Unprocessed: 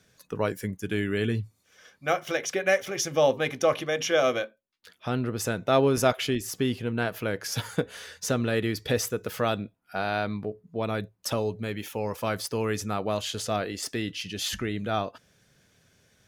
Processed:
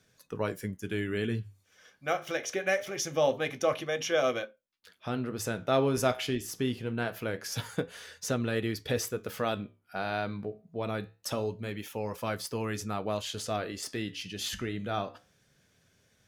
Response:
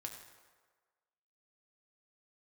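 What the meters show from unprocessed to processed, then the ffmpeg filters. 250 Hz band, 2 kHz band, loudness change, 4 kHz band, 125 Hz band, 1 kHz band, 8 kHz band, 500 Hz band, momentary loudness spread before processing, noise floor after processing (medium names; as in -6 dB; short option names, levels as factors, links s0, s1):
-4.0 dB, -4.5 dB, -4.5 dB, -4.5 dB, -4.5 dB, -4.5 dB, -4.5 dB, -4.5 dB, 10 LU, -69 dBFS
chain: -af "flanger=delay=7.9:depth=8.6:regen=-74:speed=0.24:shape=sinusoidal"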